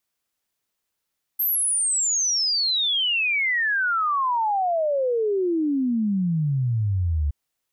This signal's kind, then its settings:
exponential sine sweep 13,000 Hz → 70 Hz 5.92 s −19.5 dBFS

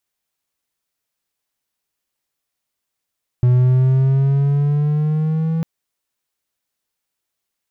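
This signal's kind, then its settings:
pitch glide with a swell triangle, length 2.20 s, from 123 Hz, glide +5 semitones, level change −7 dB, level −7.5 dB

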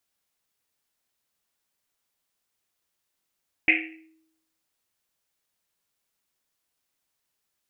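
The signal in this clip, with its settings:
drum after Risset, pitch 320 Hz, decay 0.84 s, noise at 2,300 Hz, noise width 800 Hz, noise 70%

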